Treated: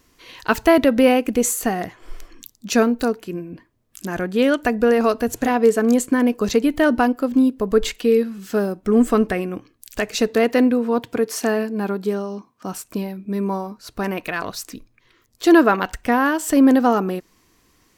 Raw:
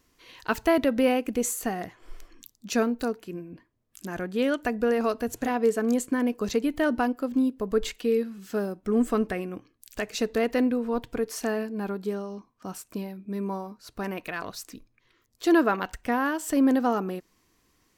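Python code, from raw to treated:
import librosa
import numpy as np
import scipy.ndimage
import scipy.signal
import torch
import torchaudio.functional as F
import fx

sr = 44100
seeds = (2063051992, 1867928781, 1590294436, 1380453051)

y = fx.highpass(x, sr, hz=120.0, slope=12, at=(10.28, 12.73))
y = F.gain(torch.from_numpy(y), 8.0).numpy()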